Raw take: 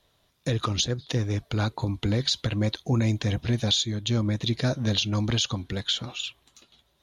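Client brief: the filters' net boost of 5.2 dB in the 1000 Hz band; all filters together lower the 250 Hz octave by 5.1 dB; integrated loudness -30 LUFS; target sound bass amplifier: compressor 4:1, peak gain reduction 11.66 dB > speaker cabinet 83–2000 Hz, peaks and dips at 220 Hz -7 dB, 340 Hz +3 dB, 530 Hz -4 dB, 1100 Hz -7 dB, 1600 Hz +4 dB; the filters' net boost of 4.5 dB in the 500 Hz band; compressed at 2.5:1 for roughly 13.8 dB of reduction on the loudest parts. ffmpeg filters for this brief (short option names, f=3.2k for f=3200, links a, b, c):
-af "equalizer=f=250:t=o:g=-8,equalizer=f=500:t=o:g=8,equalizer=f=1k:t=o:g=8,acompressor=threshold=-39dB:ratio=2.5,acompressor=threshold=-43dB:ratio=4,highpass=f=83:w=0.5412,highpass=f=83:w=1.3066,equalizer=f=220:t=q:w=4:g=-7,equalizer=f=340:t=q:w=4:g=3,equalizer=f=530:t=q:w=4:g=-4,equalizer=f=1.1k:t=q:w=4:g=-7,equalizer=f=1.6k:t=q:w=4:g=4,lowpass=f=2k:w=0.5412,lowpass=f=2k:w=1.3066,volume=19dB"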